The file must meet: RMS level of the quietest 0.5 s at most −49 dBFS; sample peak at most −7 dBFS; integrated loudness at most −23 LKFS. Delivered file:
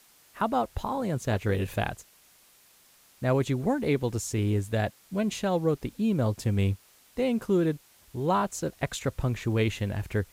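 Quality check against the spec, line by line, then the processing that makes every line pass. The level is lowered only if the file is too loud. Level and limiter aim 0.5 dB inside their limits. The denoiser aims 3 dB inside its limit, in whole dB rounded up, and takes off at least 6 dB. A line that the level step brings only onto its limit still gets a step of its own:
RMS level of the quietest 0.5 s −59 dBFS: in spec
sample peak −13.5 dBFS: in spec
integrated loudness −28.5 LKFS: in spec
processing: no processing needed

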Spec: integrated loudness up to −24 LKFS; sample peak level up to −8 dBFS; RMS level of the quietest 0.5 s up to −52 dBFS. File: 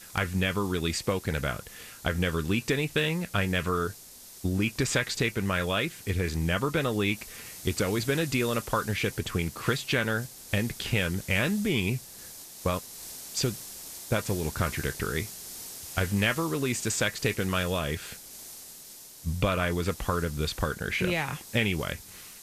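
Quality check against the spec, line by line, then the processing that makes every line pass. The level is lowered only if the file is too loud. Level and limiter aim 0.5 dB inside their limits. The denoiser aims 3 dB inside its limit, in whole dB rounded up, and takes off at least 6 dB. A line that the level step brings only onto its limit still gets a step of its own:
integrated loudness −29.0 LKFS: in spec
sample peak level −10.5 dBFS: in spec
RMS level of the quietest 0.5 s −48 dBFS: out of spec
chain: broadband denoise 7 dB, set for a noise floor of −48 dBFS

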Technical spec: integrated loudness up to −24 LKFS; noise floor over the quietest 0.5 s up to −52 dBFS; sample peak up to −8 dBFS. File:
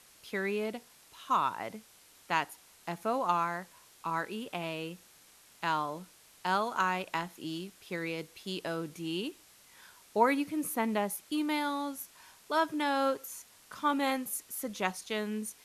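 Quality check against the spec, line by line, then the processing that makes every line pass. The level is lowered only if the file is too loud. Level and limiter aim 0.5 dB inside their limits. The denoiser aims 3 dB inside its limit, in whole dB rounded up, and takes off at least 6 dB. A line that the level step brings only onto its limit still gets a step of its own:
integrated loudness −33.5 LKFS: in spec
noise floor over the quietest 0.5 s −60 dBFS: in spec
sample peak −13.0 dBFS: in spec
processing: no processing needed

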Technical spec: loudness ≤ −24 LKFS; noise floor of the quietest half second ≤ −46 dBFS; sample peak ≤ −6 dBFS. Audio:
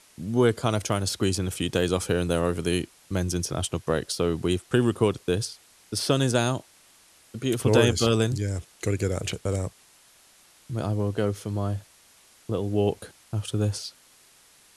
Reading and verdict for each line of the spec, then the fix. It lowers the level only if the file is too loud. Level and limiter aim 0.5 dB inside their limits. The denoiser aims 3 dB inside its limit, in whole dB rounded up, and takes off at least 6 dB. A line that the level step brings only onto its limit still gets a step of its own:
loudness −26.5 LKFS: in spec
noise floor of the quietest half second −57 dBFS: in spec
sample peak −5.0 dBFS: out of spec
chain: brickwall limiter −6.5 dBFS

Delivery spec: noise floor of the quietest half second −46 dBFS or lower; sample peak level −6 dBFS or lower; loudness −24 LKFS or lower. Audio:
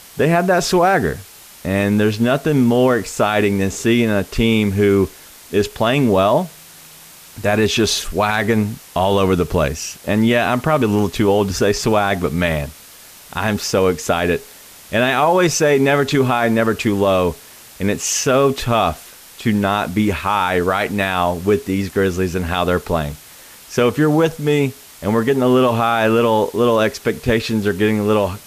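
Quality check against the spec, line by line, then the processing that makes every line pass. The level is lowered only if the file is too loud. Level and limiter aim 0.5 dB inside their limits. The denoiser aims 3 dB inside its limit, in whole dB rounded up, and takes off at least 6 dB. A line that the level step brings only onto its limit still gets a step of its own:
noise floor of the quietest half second −41 dBFS: out of spec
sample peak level −5.5 dBFS: out of spec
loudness −17.0 LKFS: out of spec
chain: level −7.5 dB

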